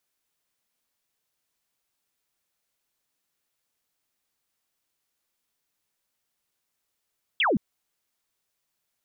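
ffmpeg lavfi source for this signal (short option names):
-f lavfi -i "aevalsrc='0.106*clip(t/0.002,0,1)*clip((0.17-t)/0.002,0,1)*sin(2*PI*3500*0.17/log(170/3500)*(exp(log(170/3500)*t/0.17)-1))':d=0.17:s=44100"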